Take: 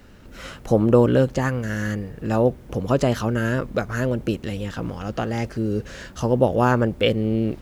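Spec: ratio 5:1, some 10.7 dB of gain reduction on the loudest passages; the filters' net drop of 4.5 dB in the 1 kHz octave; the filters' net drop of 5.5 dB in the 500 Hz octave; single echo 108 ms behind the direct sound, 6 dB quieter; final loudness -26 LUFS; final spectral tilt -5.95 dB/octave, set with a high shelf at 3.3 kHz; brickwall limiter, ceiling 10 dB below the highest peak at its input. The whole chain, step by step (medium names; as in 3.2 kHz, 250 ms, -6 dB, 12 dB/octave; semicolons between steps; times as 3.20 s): peaking EQ 500 Hz -5.5 dB; peaking EQ 1 kHz -4.5 dB; treble shelf 3.3 kHz +4.5 dB; compression 5:1, threshold -25 dBFS; peak limiter -21 dBFS; delay 108 ms -6 dB; trim +5.5 dB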